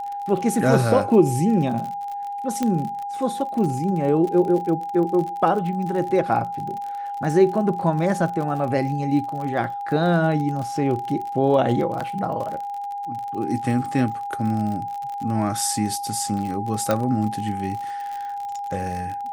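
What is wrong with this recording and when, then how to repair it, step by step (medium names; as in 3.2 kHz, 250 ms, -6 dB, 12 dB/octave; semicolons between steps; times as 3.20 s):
crackle 48 per s -29 dBFS
whine 810 Hz -27 dBFS
2.63 s: pop -11 dBFS
12.00–12.01 s: dropout 5.3 ms
16.91 s: pop -8 dBFS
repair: de-click; band-stop 810 Hz, Q 30; interpolate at 12.00 s, 5.3 ms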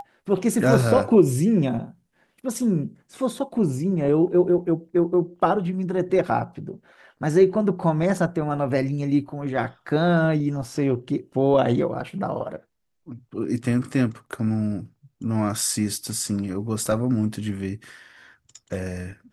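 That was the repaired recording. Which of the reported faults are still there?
nothing left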